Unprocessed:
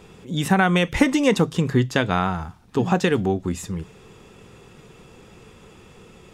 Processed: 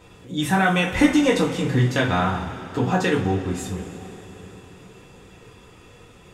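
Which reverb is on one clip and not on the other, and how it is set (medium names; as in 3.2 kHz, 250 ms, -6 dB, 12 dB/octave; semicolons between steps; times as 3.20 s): two-slope reverb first 0.31 s, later 4.2 s, from -19 dB, DRR -4 dB; trim -5 dB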